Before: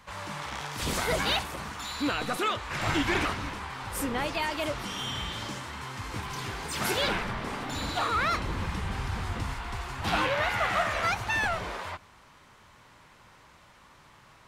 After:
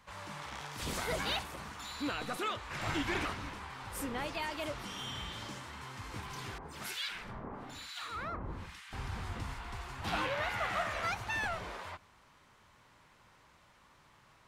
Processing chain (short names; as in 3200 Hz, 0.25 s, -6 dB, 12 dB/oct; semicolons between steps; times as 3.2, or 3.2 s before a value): 6.58–8.93 harmonic tremolo 1.1 Hz, depth 100%, crossover 1400 Hz; gain -7.5 dB